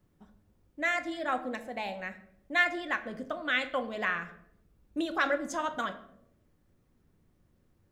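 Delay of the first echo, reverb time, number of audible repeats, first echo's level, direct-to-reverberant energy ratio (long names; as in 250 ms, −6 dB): no echo audible, 0.75 s, no echo audible, no echo audible, 7.5 dB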